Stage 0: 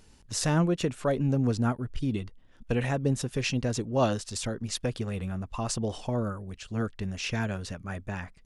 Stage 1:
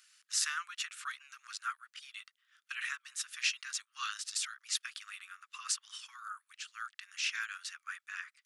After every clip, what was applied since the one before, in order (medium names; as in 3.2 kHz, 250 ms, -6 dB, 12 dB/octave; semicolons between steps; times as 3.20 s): steep high-pass 1.2 kHz 72 dB/octave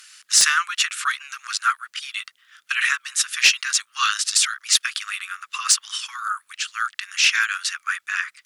sine folder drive 8 dB, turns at -11.5 dBFS; trim +6 dB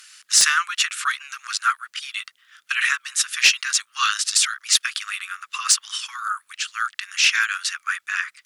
no audible change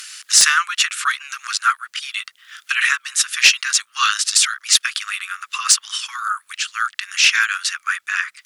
tape noise reduction on one side only encoder only; trim +3.5 dB